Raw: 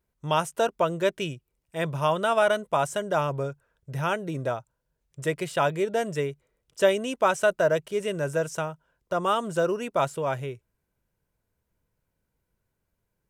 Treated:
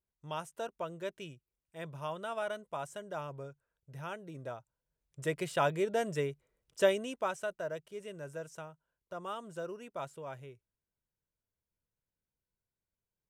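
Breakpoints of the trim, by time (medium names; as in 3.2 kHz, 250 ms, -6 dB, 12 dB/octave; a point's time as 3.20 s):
4.33 s -15 dB
5.41 s -5.5 dB
6.83 s -5.5 dB
7.52 s -16 dB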